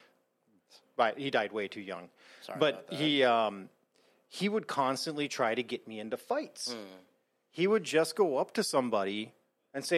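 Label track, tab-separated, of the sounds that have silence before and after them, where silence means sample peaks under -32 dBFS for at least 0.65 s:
0.990000	3.490000	sound
4.360000	6.810000	sound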